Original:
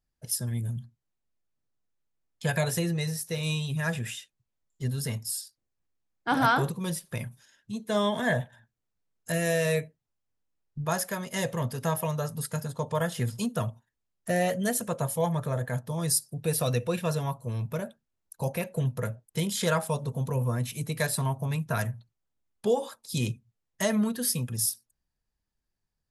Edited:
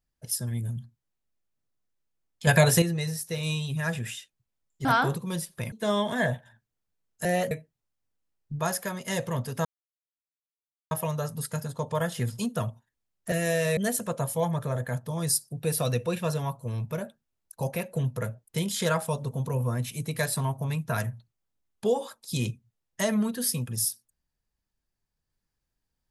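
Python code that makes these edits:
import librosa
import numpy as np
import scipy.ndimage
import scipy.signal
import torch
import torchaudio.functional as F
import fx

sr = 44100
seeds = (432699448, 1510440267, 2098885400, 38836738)

y = fx.edit(x, sr, fx.clip_gain(start_s=2.47, length_s=0.35, db=8.0),
    fx.cut(start_s=4.85, length_s=1.54),
    fx.cut(start_s=7.26, length_s=0.53),
    fx.swap(start_s=9.32, length_s=0.45, other_s=14.32, other_length_s=0.26),
    fx.insert_silence(at_s=11.91, length_s=1.26), tone=tone)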